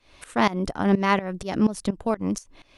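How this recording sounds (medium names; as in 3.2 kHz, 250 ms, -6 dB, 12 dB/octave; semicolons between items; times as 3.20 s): tremolo saw up 4.2 Hz, depth 90%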